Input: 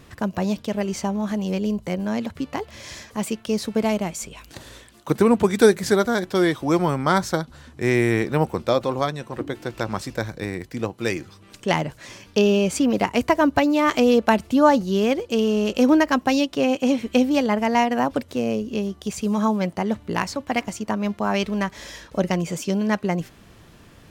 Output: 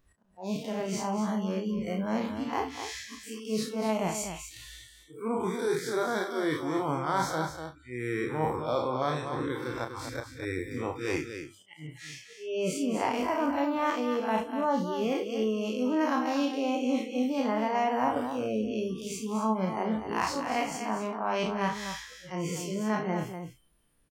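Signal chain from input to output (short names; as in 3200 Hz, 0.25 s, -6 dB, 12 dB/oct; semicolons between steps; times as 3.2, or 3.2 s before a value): time blur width 98 ms; reverse; compressor 16:1, threshold -27 dBFS, peak gain reduction 15.5 dB; reverse; auto swell 0.267 s; dynamic EQ 970 Hz, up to +6 dB, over -46 dBFS, Q 1.1; spectral noise reduction 25 dB; low shelf 85 Hz -6 dB; on a send: loudspeakers at several distances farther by 11 m -7 dB, 84 m -8 dB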